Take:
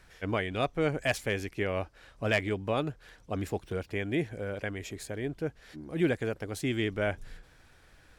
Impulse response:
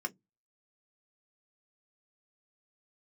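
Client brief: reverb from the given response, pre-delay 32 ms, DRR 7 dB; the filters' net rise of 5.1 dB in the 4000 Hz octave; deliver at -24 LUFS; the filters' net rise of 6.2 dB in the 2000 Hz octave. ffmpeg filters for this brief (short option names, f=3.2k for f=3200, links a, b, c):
-filter_complex "[0:a]equalizer=f=2k:t=o:g=6.5,equalizer=f=4k:t=o:g=4,asplit=2[a][b];[1:a]atrim=start_sample=2205,adelay=32[c];[b][c]afir=irnorm=-1:irlink=0,volume=-9dB[d];[a][d]amix=inputs=2:normalize=0,volume=5.5dB"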